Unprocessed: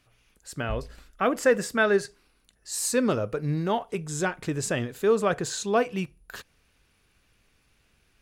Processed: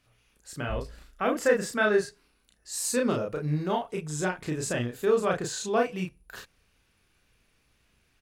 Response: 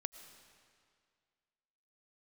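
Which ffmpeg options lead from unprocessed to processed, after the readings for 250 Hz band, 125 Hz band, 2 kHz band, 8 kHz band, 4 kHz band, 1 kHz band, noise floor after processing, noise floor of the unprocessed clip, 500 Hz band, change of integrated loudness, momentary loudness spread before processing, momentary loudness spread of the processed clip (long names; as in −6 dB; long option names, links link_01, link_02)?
−2.0 dB, −1.5 dB, −1.5 dB, −2.0 dB, −2.0 dB, −2.0 dB, −69 dBFS, −67 dBFS, −1.5 dB, −1.5 dB, 12 LU, 13 LU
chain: -filter_complex "[0:a]asplit=2[link_01][link_02];[link_02]adelay=33,volume=-2dB[link_03];[link_01][link_03]amix=inputs=2:normalize=0,volume=-4dB"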